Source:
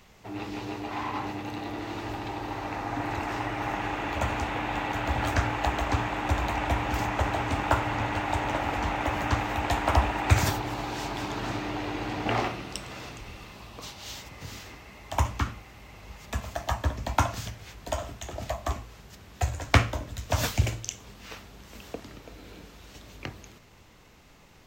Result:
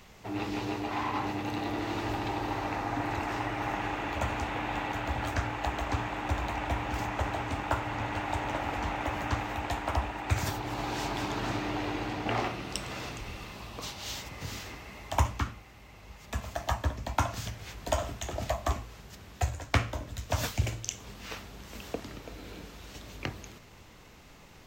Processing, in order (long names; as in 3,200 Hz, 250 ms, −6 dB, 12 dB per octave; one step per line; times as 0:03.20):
0:06.25–0:06.98: running median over 3 samples
speech leveller within 5 dB 0.5 s
level −3 dB